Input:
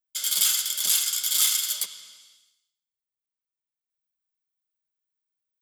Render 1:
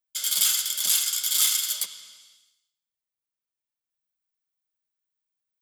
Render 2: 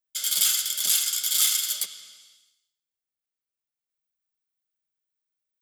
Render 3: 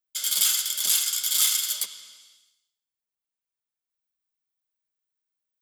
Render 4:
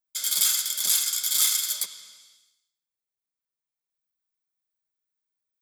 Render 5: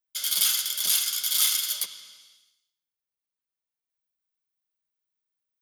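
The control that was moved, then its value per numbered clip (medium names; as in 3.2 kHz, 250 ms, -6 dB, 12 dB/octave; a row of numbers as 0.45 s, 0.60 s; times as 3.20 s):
band-stop, frequency: 390 Hz, 1 kHz, 150 Hz, 2.9 kHz, 7.6 kHz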